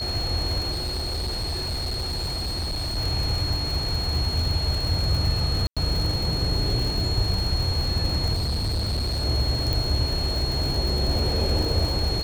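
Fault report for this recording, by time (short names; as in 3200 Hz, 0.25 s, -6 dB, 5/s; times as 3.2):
crackle 150/s -27 dBFS
tone 4300 Hz -28 dBFS
0.71–2.98 clipped -24.5 dBFS
5.67–5.77 gap 96 ms
8.33–9.25 clipped -22 dBFS
9.73 pop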